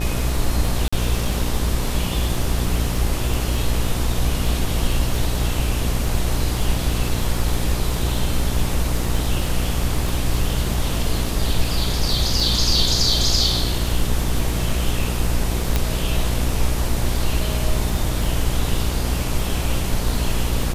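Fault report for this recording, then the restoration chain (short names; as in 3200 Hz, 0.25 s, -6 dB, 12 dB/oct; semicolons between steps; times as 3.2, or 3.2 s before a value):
buzz 60 Hz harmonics 21 -24 dBFS
crackle 26/s -25 dBFS
0.88–0.93 gap 45 ms
10.09 pop
15.76 pop -4 dBFS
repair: de-click; de-hum 60 Hz, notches 21; interpolate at 0.88, 45 ms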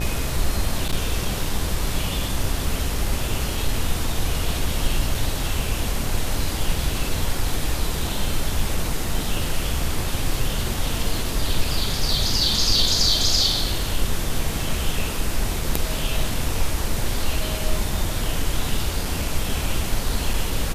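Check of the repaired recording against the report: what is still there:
10.09 pop
15.76 pop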